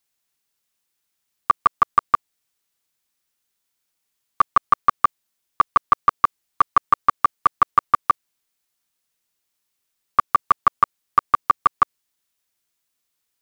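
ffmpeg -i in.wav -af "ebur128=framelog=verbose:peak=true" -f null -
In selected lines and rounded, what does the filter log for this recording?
Integrated loudness:
  I:         -20.6 LUFS
  Threshold: -30.7 LUFS
Loudness range:
  LRA:         4.8 LU
  Threshold: -42.9 LUFS
  LRA low:   -25.4 LUFS
  LRA high:  -20.6 LUFS
True peak:
  Peak:       -5.3 dBFS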